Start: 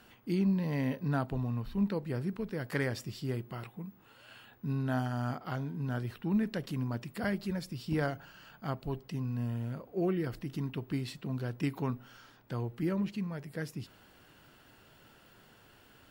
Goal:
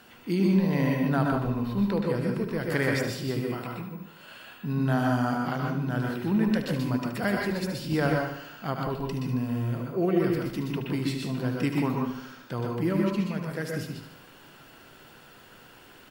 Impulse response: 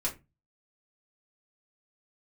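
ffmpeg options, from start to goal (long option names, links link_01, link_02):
-filter_complex "[0:a]lowshelf=frequency=97:gain=-10.5,aecho=1:1:74|148|222|296|370|444:0.316|0.174|0.0957|0.0526|0.0289|0.0159,asplit=2[link_01][link_02];[1:a]atrim=start_sample=2205,adelay=122[link_03];[link_02][link_03]afir=irnorm=-1:irlink=0,volume=-5.5dB[link_04];[link_01][link_04]amix=inputs=2:normalize=0,volume=6dB"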